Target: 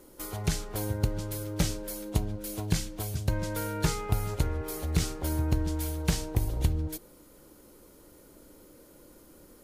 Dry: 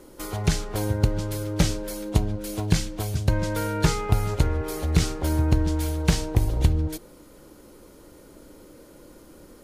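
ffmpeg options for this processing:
-af "highshelf=f=11k:g=12,volume=-6.5dB"

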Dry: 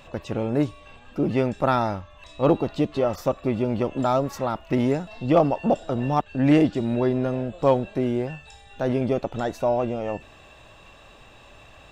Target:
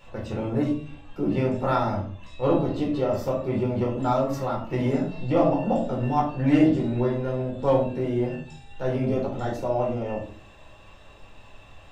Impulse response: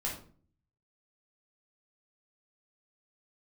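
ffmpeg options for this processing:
-filter_complex "[1:a]atrim=start_sample=2205[a];[0:a][a]afir=irnorm=-1:irlink=0,volume=-5.5dB"

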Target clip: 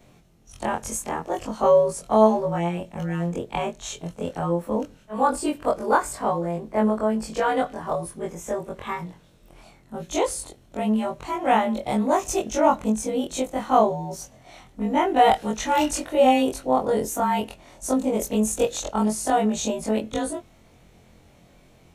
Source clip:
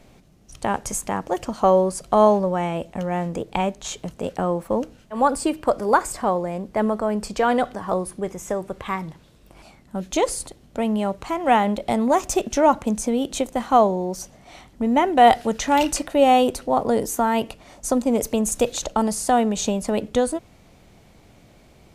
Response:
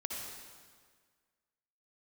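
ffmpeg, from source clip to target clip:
-af "afftfilt=real='re':imag='-im':win_size=2048:overlap=0.75,bandreject=f=4.8k:w=13,volume=2dB"

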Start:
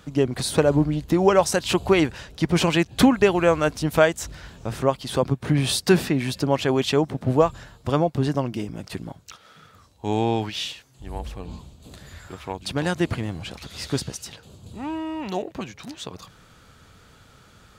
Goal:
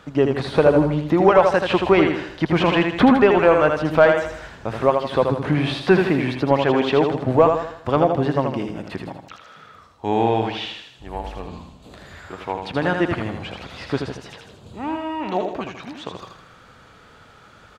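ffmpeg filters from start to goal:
-filter_complex "[0:a]aecho=1:1:80|160|240|320|400:0.501|0.216|0.0927|0.0398|0.0171,acrossover=split=3800[a][b];[b]acompressor=threshold=-47dB:ratio=4:attack=1:release=60[c];[a][c]amix=inputs=2:normalize=0,asplit=2[d][e];[e]highpass=f=720:p=1,volume=11dB,asoftclip=type=tanh:threshold=-3dB[f];[d][f]amix=inputs=2:normalize=0,lowpass=f=1.4k:p=1,volume=-6dB,volume=2.5dB"

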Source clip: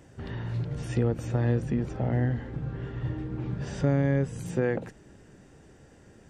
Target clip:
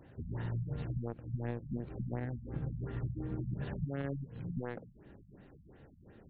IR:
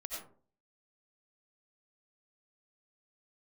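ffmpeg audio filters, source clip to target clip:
-af "aeval=exprs='0.237*(cos(1*acos(clip(val(0)/0.237,-1,1)))-cos(1*PI/2))+0.0596*(cos(3*acos(clip(val(0)/0.237,-1,1)))-cos(3*PI/2))+0.00168*(cos(8*acos(clip(val(0)/0.237,-1,1)))-cos(8*PI/2))':c=same,acompressor=threshold=-41dB:ratio=12,afftfilt=real='re*lt(b*sr/1024,210*pow(4600/210,0.5+0.5*sin(2*PI*2.8*pts/sr)))':imag='im*lt(b*sr/1024,210*pow(4600/210,0.5+0.5*sin(2*PI*2.8*pts/sr)))':win_size=1024:overlap=0.75,volume=9dB"

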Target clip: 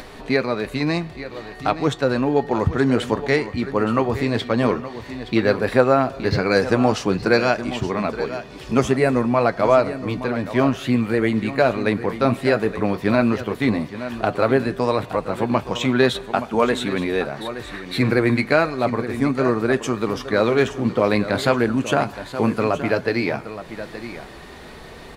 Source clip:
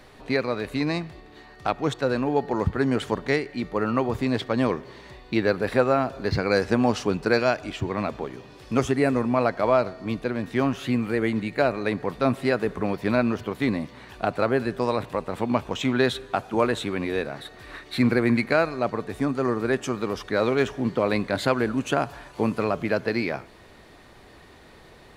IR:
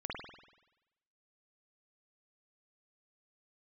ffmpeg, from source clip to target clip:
-af "acompressor=mode=upward:threshold=-36dB:ratio=2.5,aecho=1:1:871:0.237,flanger=delay=4.3:depth=5.7:regen=-63:speed=0.12:shape=triangular,volume=8.5dB"

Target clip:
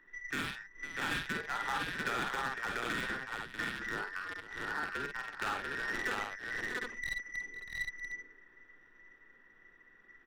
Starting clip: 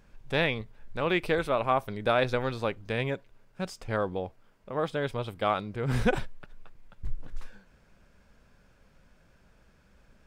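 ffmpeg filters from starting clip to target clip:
-filter_complex "[0:a]afftfilt=real='real(if(between(b,1,1012),(2*floor((b-1)/92)+1)*92-b,b),0)':imag='imag(if(between(b,1,1012),(2*floor((b-1)/92)+1)*92-b,b),0)*if(between(b,1,1012),-1,1)':win_size=2048:overlap=0.75,equalizer=f=630:t=o:w=0.67:g=-11,equalizer=f=2.5k:t=o:w=0.67:g=9,equalizer=f=6.3k:t=o:w=0.67:g=-3,acrossover=split=170|620[a][b][c];[a]acompressor=threshold=-51dB:ratio=4[d];[b]acompressor=threshold=-43dB:ratio=4[e];[c]acompressor=threshold=-39dB:ratio=4[f];[d][e][f]amix=inputs=3:normalize=0,asplit=2[g][h];[h]acrusher=bits=4:mix=0:aa=0.000001,volume=-5dB[i];[g][i]amix=inputs=2:normalize=0,adynamicsmooth=sensitivity=5.5:basefreq=1.2k,asplit=2[j][k];[k]aecho=0:1:46|51|505|640|691|759:0.316|0.376|0.158|0.299|0.631|0.447[l];[j][l]amix=inputs=2:normalize=0,volume=27.5dB,asoftclip=hard,volume=-27.5dB"

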